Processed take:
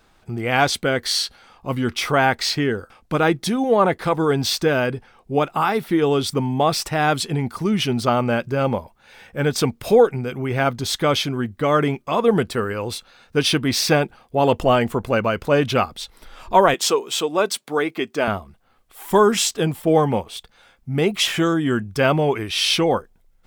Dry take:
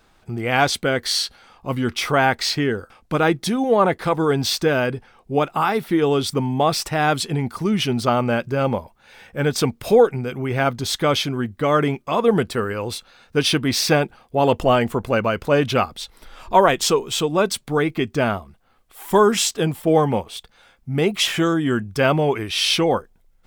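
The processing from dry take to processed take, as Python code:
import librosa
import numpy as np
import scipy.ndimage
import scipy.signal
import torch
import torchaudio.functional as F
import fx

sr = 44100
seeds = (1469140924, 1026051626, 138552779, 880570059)

y = fx.highpass(x, sr, hz=310.0, slope=12, at=(16.74, 18.28))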